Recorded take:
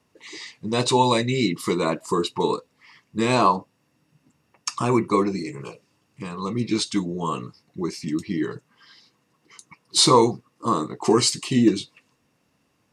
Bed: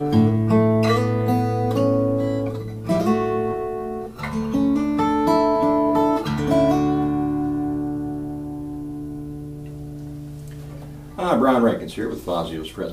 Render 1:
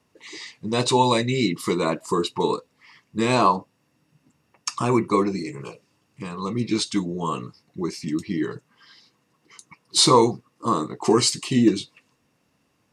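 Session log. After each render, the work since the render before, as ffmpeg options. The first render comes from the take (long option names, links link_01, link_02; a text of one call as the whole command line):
ffmpeg -i in.wav -af anull out.wav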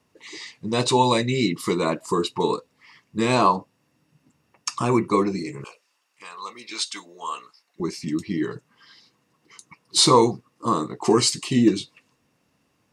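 ffmpeg -i in.wav -filter_complex "[0:a]asettb=1/sr,asplit=3[link_01][link_02][link_03];[link_01]atrim=end=5.644[link_04];[link_02]atrim=start=5.64:end=7.8,asetpts=PTS-STARTPTS,afade=type=in:duration=0.004:curve=qsin,afade=type=out:start_time=2.156:duration=0.004:curve=qsin,highpass=930[link_05];[link_03]atrim=start=7.796[link_06];[link_04][link_05]acrossfade=duration=0.004:curve1=hsin:curve2=qsin[link_07];[link_07][link_06]acrossfade=duration=0.004:curve1=qsin:curve2=hsin" out.wav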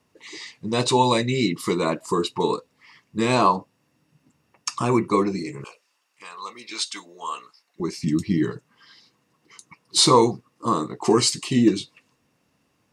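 ffmpeg -i in.wav -filter_complex "[0:a]asettb=1/sr,asplit=3[link_01][link_02][link_03];[link_01]atrim=end=8.034[link_04];[link_02]atrim=start=8.03:end=8.51,asetpts=PTS-STARTPTS,afade=type=in:duration=0.004:curve=qsin,afade=type=out:start_time=0.476:duration=0.004:curve=qsin,bass=frequency=250:gain=9,treble=frequency=4000:gain=4[link_05];[link_03]atrim=start=8.506[link_06];[link_04][link_05]acrossfade=duration=0.004:curve1=hsin:curve2=qsin[link_07];[link_07][link_06]acrossfade=duration=0.004:curve1=qsin:curve2=hsin" out.wav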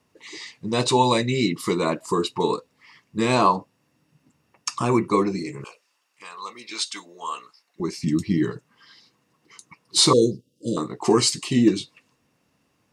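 ffmpeg -i in.wav -filter_complex "[0:a]asettb=1/sr,asplit=3[link_01][link_02][link_03];[link_01]atrim=end=10.134[link_04];[link_02]atrim=start=10.13:end=10.77,asetpts=PTS-STARTPTS,afade=type=in:duration=0.004:curve=qsin,afade=type=out:start_time=0.636:duration=0.004:curve=qsin,asuperstop=centerf=1300:order=20:qfactor=0.57[link_05];[link_03]atrim=start=10.766[link_06];[link_04][link_05]acrossfade=duration=0.004:curve1=hsin:curve2=qsin[link_07];[link_07][link_06]acrossfade=duration=0.004:curve1=qsin:curve2=hsin" out.wav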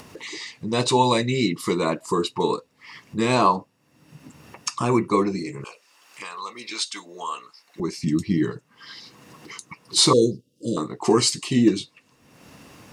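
ffmpeg -i in.wav -af "acompressor=mode=upward:threshold=-29dB:ratio=2.5" out.wav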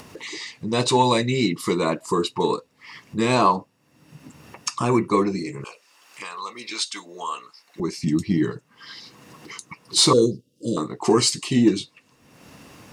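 ffmpeg -i in.wav -af "aeval=exprs='0.631*(cos(1*acos(clip(val(0)/0.631,-1,1)))-cos(1*PI/2))+0.0141*(cos(5*acos(clip(val(0)/0.631,-1,1)))-cos(5*PI/2))':channel_layout=same" out.wav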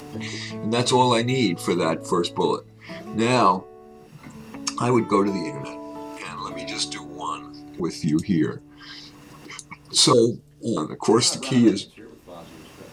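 ffmpeg -i in.wav -i bed.wav -filter_complex "[1:a]volume=-18dB[link_01];[0:a][link_01]amix=inputs=2:normalize=0" out.wav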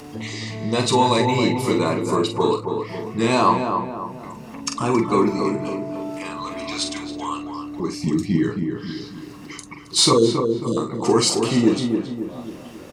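ffmpeg -i in.wav -filter_complex "[0:a]asplit=2[link_01][link_02];[link_02]adelay=44,volume=-7dB[link_03];[link_01][link_03]amix=inputs=2:normalize=0,asplit=2[link_04][link_05];[link_05]adelay=272,lowpass=frequency=1600:poles=1,volume=-5dB,asplit=2[link_06][link_07];[link_07]adelay=272,lowpass=frequency=1600:poles=1,volume=0.48,asplit=2[link_08][link_09];[link_09]adelay=272,lowpass=frequency=1600:poles=1,volume=0.48,asplit=2[link_10][link_11];[link_11]adelay=272,lowpass=frequency=1600:poles=1,volume=0.48,asplit=2[link_12][link_13];[link_13]adelay=272,lowpass=frequency=1600:poles=1,volume=0.48,asplit=2[link_14][link_15];[link_15]adelay=272,lowpass=frequency=1600:poles=1,volume=0.48[link_16];[link_04][link_06][link_08][link_10][link_12][link_14][link_16]amix=inputs=7:normalize=0" out.wav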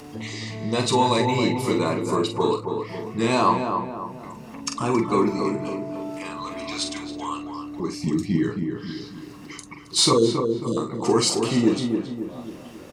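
ffmpeg -i in.wav -af "volume=-2.5dB" out.wav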